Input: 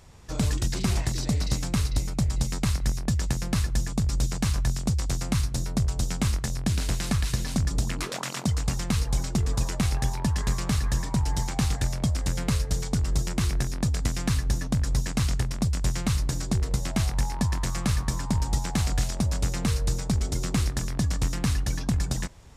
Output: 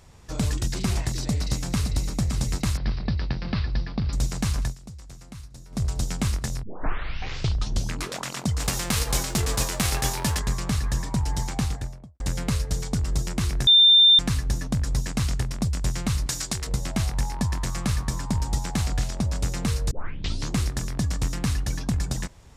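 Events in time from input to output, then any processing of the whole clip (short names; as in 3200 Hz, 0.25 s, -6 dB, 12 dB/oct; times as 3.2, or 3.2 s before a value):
1.08–2.04 echo throw 0.57 s, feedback 75%, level -8.5 dB
2.77–4.13 elliptic low-pass 4800 Hz
4.63–5.83 dip -16 dB, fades 0.13 s
6.63 tape start 1.38 s
8.59–10.38 spectral whitening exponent 0.6
11.51–12.2 studio fade out
13.67–14.19 bleep 3590 Hz -11 dBFS
16.26–16.67 tilt shelf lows -8 dB, about 800 Hz
18.87–19.36 high shelf 7800 Hz -6.5 dB
19.91 tape start 0.65 s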